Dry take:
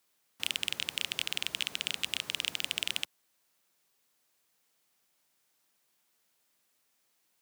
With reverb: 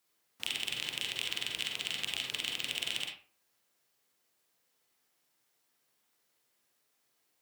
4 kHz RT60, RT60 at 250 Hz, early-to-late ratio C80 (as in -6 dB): 0.25 s, 0.40 s, 7.5 dB